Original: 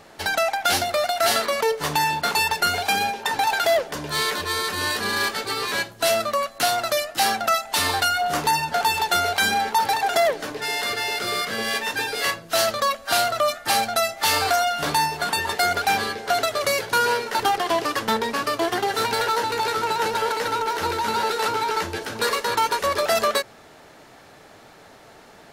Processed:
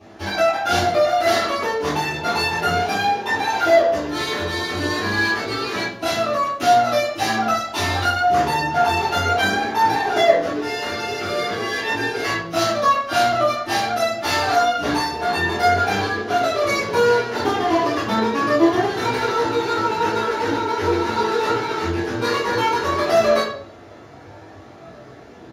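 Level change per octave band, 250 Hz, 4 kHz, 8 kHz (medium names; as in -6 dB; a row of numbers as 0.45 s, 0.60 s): +10.0 dB, -1.5 dB, -5.0 dB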